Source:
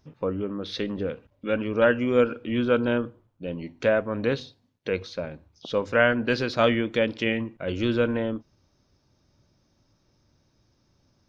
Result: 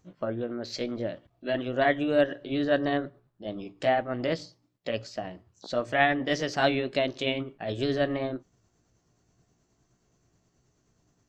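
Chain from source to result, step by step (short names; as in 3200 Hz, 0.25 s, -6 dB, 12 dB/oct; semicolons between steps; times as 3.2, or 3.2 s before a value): delay-line pitch shifter +3 st; gain -2 dB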